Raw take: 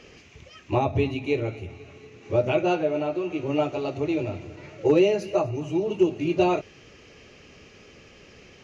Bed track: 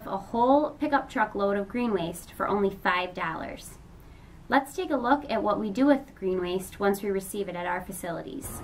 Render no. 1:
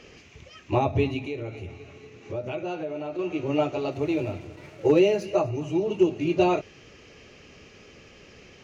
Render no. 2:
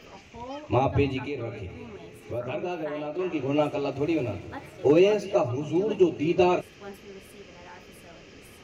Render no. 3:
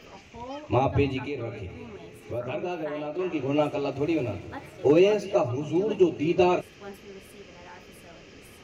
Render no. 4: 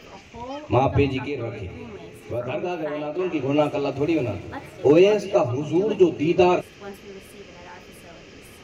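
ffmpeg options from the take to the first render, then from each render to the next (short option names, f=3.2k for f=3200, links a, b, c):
-filter_complex "[0:a]asettb=1/sr,asplit=3[a][b][c];[a]atrim=end=1.234[d];[b]atrim=start=1.23:end=3.19,asetpts=PTS-STARTPTS,afade=t=in:d=0.004:c=qsin,afade=t=out:st=1.956:d=0.004:c=qsin,acompressor=threshold=-32dB:ratio=2.5:attack=3.2:release=140:knee=1:detection=peak[e];[c]atrim=start=3.186[f];[d][e]acrossfade=d=0.004:c1=hsin:c2=qsin[g];[g][f]acrossfade=d=0.004:c1=qsin:c2=hsin,asettb=1/sr,asplit=3[h][i][j];[h]atrim=end=3.924[k];[i]atrim=start=3.92:end=5.24,asetpts=PTS-STARTPTS,afade=t=in:d=0.004:c=qsin,afade=t=out:st=1.316:d=0.004:c=qsin,aeval=exprs='sgn(val(0))*max(abs(val(0))-0.002,0)':c=same[l];[j]atrim=start=5.236[m];[k][l]acrossfade=d=0.004:c1=hsin:c2=qsin[n];[n][m]acrossfade=d=0.004:c1=qsin:c2=hsin"
-filter_complex "[1:a]volume=-17.5dB[a];[0:a][a]amix=inputs=2:normalize=0"
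-af anull
-af "volume=4dB"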